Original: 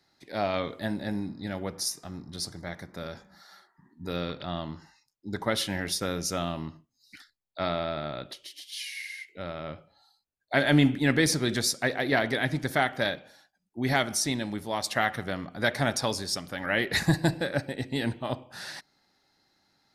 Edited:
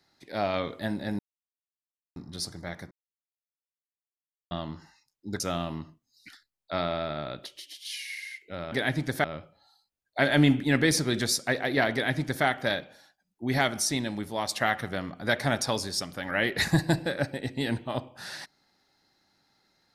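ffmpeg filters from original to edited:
-filter_complex "[0:a]asplit=8[s0][s1][s2][s3][s4][s5][s6][s7];[s0]atrim=end=1.19,asetpts=PTS-STARTPTS,afade=t=out:st=1.186:d=0.004:c=hsin[s8];[s1]atrim=start=1.19:end=2.16,asetpts=PTS-STARTPTS,volume=0[s9];[s2]atrim=start=2.16:end=2.91,asetpts=PTS-STARTPTS,afade=t=in:d=0.004:c=hsin,afade=t=out:st=0.746:d=0.004:c=hsin[s10];[s3]atrim=start=2.91:end=4.51,asetpts=PTS-STARTPTS,volume=0[s11];[s4]atrim=start=4.51:end=5.402,asetpts=PTS-STARTPTS,afade=t=in:d=0.004:c=hsin[s12];[s5]atrim=start=6.268:end=9.592[s13];[s6]atrim=start=12.278:end=12.802[s14];[s7]atrim=start=9.588[s15];[s8][s9][s10][s11][s12]concat=n=5:v=0:a=1[s16];[s16][s13]acrossfade=d=0.004:c1=hsin:c2=hsin[s17];[s17][s14]acrossfade=d=0.004:c1=hsin:c2=hsin[s18];[s18][s15]acrossfade=d=0.004:c1=hsin:c2=hsin"

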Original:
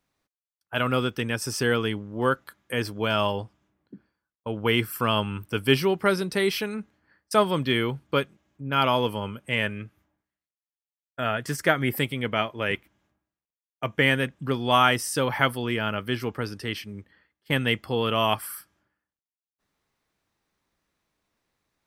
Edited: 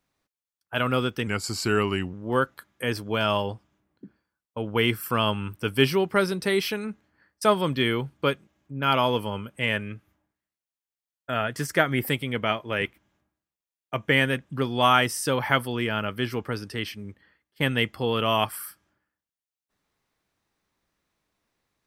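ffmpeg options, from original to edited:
-filter_complex "[0:a]asplit=3[s0][s1][s2];[s0]atrim=end=1.274[s3];[s1]atrim=start=1.27:end=2.03,asetpts=PTS-STARTPTS,asetrate=38808,aresample=44100,atrim=end_sample=38086,asetpts=PTS-STARTPTS[s4];[s2]atrim=start=2.026[s5];[s3][s4]acrossfade=d=0.004:c1=hsin:c2=hsin[s6];[s6][s5]acrossfade=d=0.004:c1=hsin:c2=hsin"

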